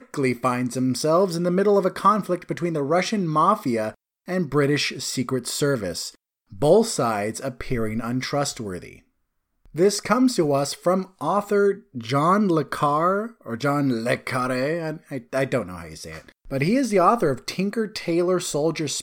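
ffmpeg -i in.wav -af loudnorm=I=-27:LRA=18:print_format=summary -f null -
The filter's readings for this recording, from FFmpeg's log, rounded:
Input Integrated:    -22.7 LUFS
Input True Peak:      -4.5 dBTP
Input LRA:             3.4 LU
Input Threshold:     -33.1 LUFS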